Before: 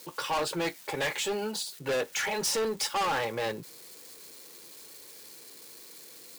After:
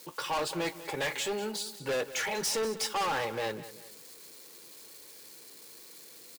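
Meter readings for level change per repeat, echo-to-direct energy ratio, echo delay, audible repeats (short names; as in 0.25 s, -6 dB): -8.0 dB, -14.5 dB, 0.194 s, 2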